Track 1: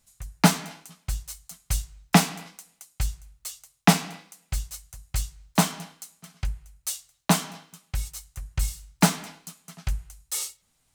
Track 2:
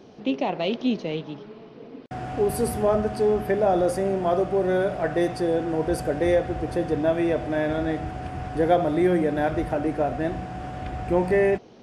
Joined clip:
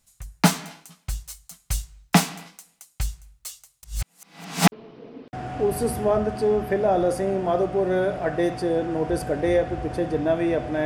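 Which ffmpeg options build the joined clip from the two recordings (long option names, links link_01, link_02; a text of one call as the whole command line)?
ffmpeg -i cue0.wav -i cue1.wav -filter_complex "[0:a]apad=whole_dur=10.85,atrim=end=10.85,asplit=2[link_01][link_02];[link_01]atrim=end=3.832[link_03];[link_02]atrim=start=3.828:end=4.722,asetpts=PTS-STARTPTS,areverse[link_04];[1:a]atrim=start=1.498:end=7.63[link_05];[link_03][link_04]acrossfade=duration=0.004:curve1=hsin:curve2=hsin[link_06];[link_06][link_05]acrossfade=duration=0.004:curve1=hsin:curve2=hsin" out.wav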